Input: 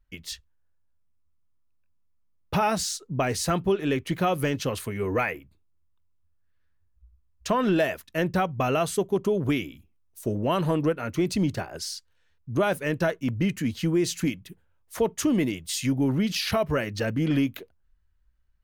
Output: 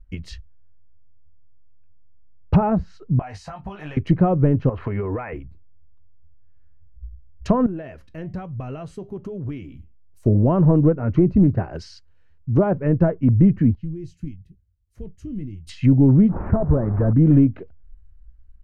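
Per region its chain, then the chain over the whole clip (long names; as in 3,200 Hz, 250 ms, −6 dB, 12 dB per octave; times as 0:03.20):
0:03.19–0:03.97: low shelf with overshoot 540 Hz −11.5 dB, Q 3 + downward compressor 8 to 1, threshold −36 dBFS + double-tracking delay 20 ms −5.5 dB
0:04.69–0:05.33: drawn EQ curve 180 Hz 0 dB, 990 Hz +12 dB, 3,200 Hz +1 dB, 14,000 Hz −23 dB + downward compressor 8 to 1, threshold −30 dBFS
0:07.66–0:10.26: downward compressor 2 to 1, threshold −41 dBFS + flanger 1.1 Hz, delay 5.8 ms, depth 3.2 ms, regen −82%
0:11.39–0:12.75: low-shelf EQ 81 Hz −6.5 dB + highs frequency-modulated by the lows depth 0.28 ms
0:13.75–0:15.67: guitar amp tone stack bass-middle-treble 10-0-1 + double-tracking delay 20 ms −10.5 dB
0:16.29–0:17.13: linear delta modulator 16 kbit/s, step −32.5 dBFS + hard clipping −22.5 dBFS + low-pass filter 1,400 Hz 24 dB per octave
whole clip: treble cut that deepens with the level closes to 1,000 Hz, closed at −23.5 dBFS; RIAA equalisation playback; notch filter 3,500 Hz, Q 8.6; level +2.5 dB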